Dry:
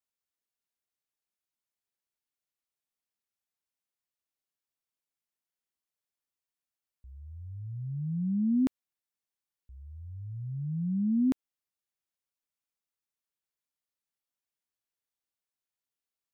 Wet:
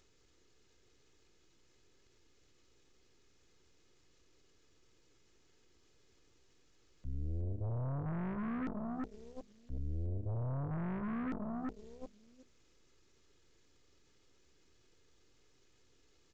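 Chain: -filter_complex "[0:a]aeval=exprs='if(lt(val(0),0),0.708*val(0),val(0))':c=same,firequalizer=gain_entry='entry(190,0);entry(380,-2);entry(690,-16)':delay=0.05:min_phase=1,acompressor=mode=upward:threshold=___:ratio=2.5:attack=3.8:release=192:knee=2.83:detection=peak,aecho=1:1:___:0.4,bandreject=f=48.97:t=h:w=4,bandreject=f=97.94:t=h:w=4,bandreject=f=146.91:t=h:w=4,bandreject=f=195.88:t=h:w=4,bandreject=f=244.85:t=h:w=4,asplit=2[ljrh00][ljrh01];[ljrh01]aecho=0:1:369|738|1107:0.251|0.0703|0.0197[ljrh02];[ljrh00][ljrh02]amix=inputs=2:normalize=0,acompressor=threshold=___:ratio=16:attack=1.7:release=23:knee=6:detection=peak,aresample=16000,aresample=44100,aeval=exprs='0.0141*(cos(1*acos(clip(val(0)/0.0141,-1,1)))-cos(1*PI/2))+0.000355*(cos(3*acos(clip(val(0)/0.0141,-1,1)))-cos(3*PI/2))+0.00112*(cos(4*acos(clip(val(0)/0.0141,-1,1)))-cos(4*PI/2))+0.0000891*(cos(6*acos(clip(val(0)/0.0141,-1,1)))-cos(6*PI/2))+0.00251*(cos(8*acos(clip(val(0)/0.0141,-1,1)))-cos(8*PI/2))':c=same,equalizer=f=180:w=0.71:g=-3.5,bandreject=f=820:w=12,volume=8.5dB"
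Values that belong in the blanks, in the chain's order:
-48dB, 2.4, -40dB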